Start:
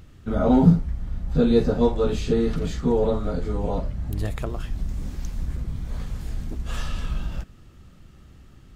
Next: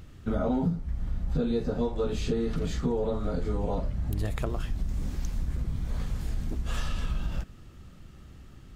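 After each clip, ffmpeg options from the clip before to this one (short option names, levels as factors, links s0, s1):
-af "acompressor=threshold=0.0631:ratio=8"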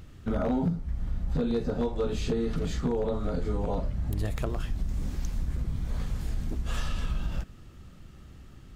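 -af "aeval=exprs='0.106*(abs(mod(val(0)/0.106+3,4)-2)-1)':c=same"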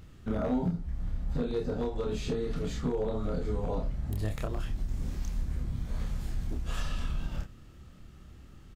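-filter_complex "[0:a]asplit=2[s0][s1];[s1]adelay=28,volume=0.631[s2];[s0][s2]amix=inputs=2:normalize=0,volume=0.631"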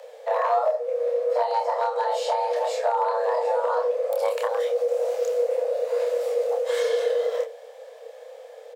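-af "afreqshift=450,volume=2.24"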